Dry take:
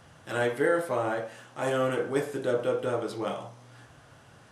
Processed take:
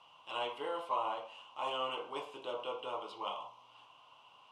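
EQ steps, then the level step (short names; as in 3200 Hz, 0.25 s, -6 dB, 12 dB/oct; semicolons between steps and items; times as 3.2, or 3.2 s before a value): double band-pass 1700 Hz, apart 1.5 oct; +5.5 dB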